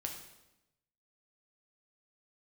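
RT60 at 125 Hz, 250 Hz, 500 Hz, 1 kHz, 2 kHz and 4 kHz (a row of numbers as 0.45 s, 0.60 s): 1.2 s, 1.1 s, 0.95 s, 0.90 s, 0.85 s, 0.85 s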